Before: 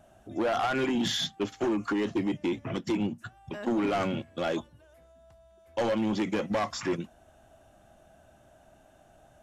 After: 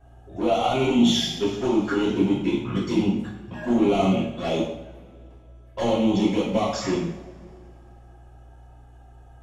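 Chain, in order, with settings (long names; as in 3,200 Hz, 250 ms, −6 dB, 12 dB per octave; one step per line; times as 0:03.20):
mains hum 60 Hz, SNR 24 dB
flanger swept by the level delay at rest 2.7 ms, full sweep at −25.5 dBFS
coupled-rooms reverb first 0.66 s, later 2.6 s, from −18 dB, DRR −7.5 dB
one half of a high-frequency compander decoder only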